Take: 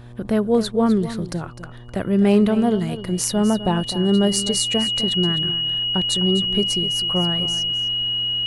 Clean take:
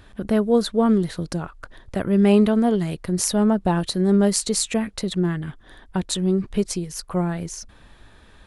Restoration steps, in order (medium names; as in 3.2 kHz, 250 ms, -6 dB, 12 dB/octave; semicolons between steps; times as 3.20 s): clip repair -6.5 dBFS; de-hum 120.1 Hz, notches 10; band-stop 2.9 kHz, Q 30; inverse comb 254 ms -13 dB